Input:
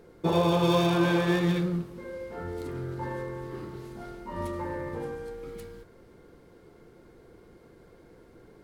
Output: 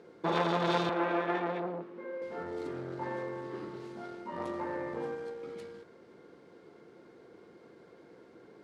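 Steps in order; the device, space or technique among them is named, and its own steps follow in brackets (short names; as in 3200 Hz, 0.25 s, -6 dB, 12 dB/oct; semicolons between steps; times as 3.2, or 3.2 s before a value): public-address speaker with an overloaded transformer (core saturation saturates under 1300 Hz; BPF 200–5900 Hz); 0.89–2.22 three-band isolator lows -23 dB, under 210 Hz, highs -16 dB, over 2700 Hz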